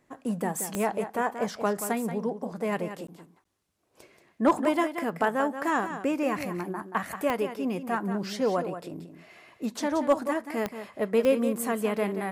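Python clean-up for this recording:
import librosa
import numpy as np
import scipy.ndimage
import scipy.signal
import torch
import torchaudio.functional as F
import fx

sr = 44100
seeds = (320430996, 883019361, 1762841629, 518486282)

y = fx.fix_declip(x, sr, threshold_db=-13.0)
y = fx.fix_declick_ar(y, sr, threshold=10.0)
y = fx.fix_interpolate(y, sr, at_s=(3.07, 3.44), length_ms=13.0)
y = fx.fix_echo_inverse(y, sr, delay_ms=180, level_db=-10.0)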